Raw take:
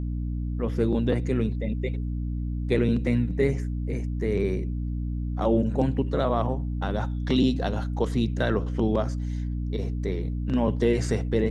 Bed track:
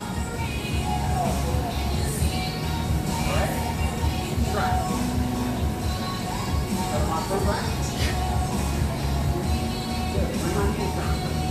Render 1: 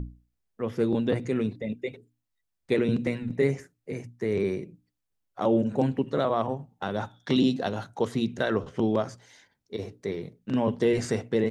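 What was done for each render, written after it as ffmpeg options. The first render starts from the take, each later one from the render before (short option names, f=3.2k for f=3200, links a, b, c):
-af "bandreject=f=60:t=h:w=6,bandreject=f=120:t=h:w=6,bandreject=f=180:t=h:w=6,bandreject=f=240:t=h:w=6,bandreject=f=300:t=h:w=6"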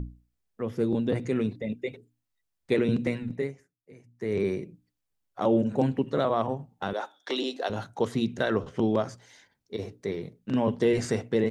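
-filter_complex "[0:a]asettb=1/sr,asplit=3[a][b][c];[a]atrim=end=0.634[d];[b]atrim=start=0.63:end=1.15,asetpts=PTS-STARTPTS,afade=t=in:d=0.004:c=qsin,afade=t=out:st=0.516:d=0.004:c=qsin,equalizer=f=1.8k:w=0.35:g=-5[e];[c]atrim=start=1.146[f];[d][e]acrossfade=d=0.004:c1=hsin:c2=qsin[g];[g][f]acrossfade=d=0.004:c1=qsin:c2=hsin,asettb=1/sr,asplit=3[h][i][j];[h]atrim=end=6.934[k];[i]atrim=start=6.93:end=7.7,asetpts=PTS-STARTPTS,afade=t=in:d=0.004:c=qsin,afade=t=out:st=0.766:d=0.004:c=qsin,highpass=f=370:w=0.5412,highpass=f=370:w=1.3066[l];[j]atrim=start=7.696[m];[k][l]acrossfade=d=0.004:c1=hsin:c2=qsin[n];[n][m]acrossfade=d=0.004:c1=qsin:c2=hsin,asplit=3[o][p][q];[o]atrim=end=3.53,asetpts=PTS-STARTPTS,afade=t=out:st=3.1:d=0.43:c=qsin:silence=0.149624[r];[p]atrim=start=3.53:end=4.06,asetpts=PTS-STARTPTS,volume=-16.5dB[s];[q]atrim=start=4.06,asetpts=PTS-STARTPTS,afade=t=in:d=0.43:c=qsin:silence=0.149624[t];[r][s][t]concat=n=3:v=0:a=1"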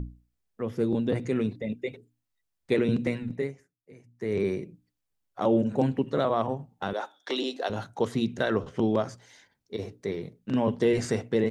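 -af anull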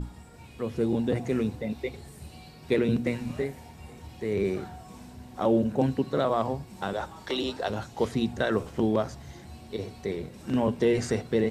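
-filter_complex "[1:a]volume=-20.5dB[a];[0:a][a]amix=inputs=2:normalize=0"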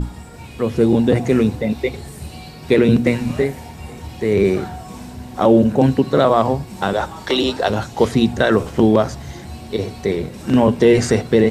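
-af "volume=12dB,alimiter=limit=-3dB:level=0:latency=1"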